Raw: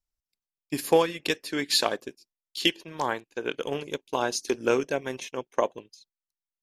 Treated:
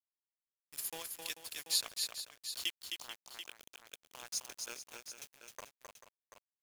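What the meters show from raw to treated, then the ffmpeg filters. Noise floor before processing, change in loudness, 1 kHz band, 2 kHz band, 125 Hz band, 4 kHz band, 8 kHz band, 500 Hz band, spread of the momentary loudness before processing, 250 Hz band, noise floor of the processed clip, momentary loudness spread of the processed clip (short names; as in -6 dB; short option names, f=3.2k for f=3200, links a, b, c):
under -85 dBFS, -12.0 dB, -23.5 dB, -16.0 dB, under -25 dB, -9.0 dB, -3.5 dB, -30.5 dB, 12 LU, -31.5 dB, under -85 dBFS, 20 LU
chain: -af "aderivative,aeval=exprs='val(0)*gte(abs(val(0)),0.015)':c=same,aecho=1:1:262|439|735:0.562|0.251|0.299,volume=-5dB"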